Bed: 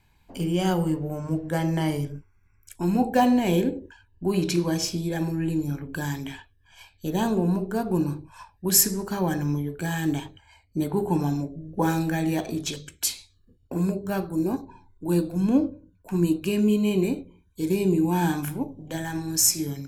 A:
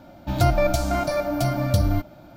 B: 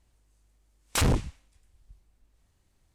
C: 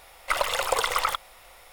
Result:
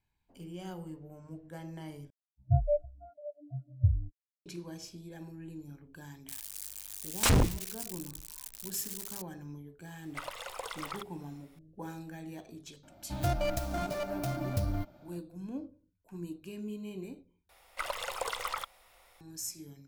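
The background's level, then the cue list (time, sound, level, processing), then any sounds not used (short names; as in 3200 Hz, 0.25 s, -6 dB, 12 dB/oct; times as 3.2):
bed -19 dB
2.1 replace with A -7 dB + spectral expander 4:1
6.28 add B -0.5 dB + switching spikes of -29.5 dBFS
9.87 add C -16 dB
12.83 add A -11.5 dB + tracing distortion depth 0.46 ms
17.49 replace with C -11 dB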